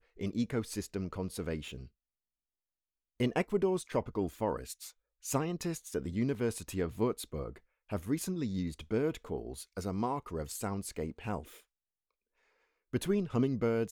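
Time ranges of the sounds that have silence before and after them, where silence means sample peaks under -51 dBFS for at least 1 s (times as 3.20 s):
3.20–11.60 s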